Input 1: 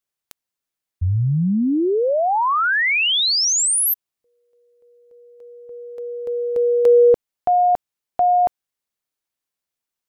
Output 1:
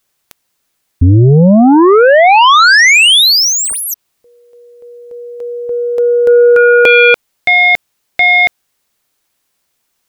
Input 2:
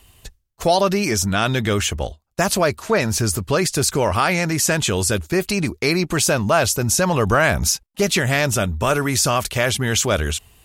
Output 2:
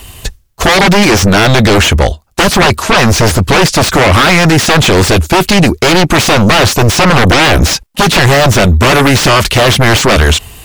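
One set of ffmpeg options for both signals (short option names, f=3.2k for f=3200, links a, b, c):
-filter_complex "[0:a]aeval=exprs='0.631*sin(PI/2*5.62*val(0)/0.631)':c=same,acrossover=split=5400[a][b];[b]acompressor=threshold=-22dB:ratio=4:attack=1:release=60[c];[a][c]amix=inputs=2:normalize=0,volume=1dB"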